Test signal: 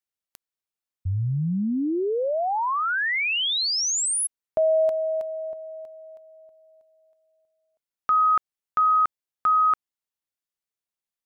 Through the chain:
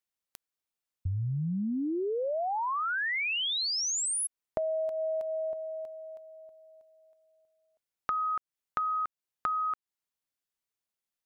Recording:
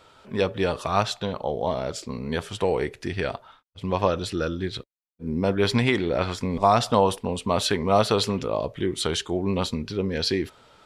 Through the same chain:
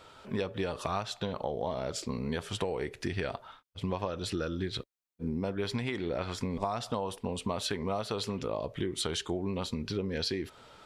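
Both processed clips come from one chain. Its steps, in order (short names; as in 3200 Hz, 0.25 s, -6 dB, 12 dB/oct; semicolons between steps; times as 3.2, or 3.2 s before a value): compressor 12:1, threshold -29 dBFS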